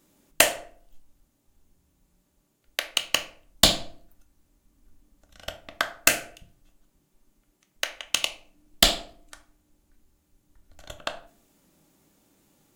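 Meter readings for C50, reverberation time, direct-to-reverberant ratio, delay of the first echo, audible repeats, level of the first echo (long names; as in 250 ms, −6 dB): 16.5 dB, 0.45 s, 7.0 dB, no echo audible, no echo audible, no echo audible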